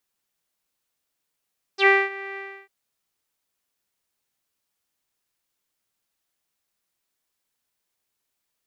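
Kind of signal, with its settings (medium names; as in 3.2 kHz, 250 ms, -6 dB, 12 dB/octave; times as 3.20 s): synth note saw G4 12 dB/octave, low-pass 2.1 kHz, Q 10, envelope 1.5 oct, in 0.06 s, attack 81 ms, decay 0.23 s, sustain -20 dB, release 0.31 s, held 0.59 s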